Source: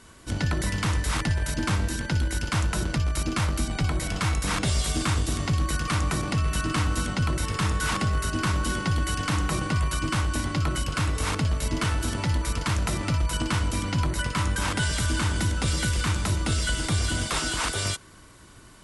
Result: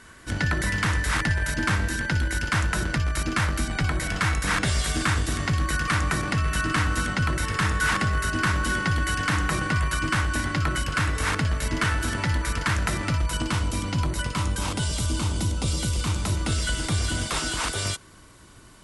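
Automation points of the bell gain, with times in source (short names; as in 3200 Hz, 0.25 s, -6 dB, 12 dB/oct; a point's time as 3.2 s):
bell 1700 Hz 0.76 oct
12.85 s +9 dB
13.66 s -2 dB
14.25 s -2 dB
14.89 s -11.5 dB
15.92 s -11.5 dB
16.42 s -0.5 dB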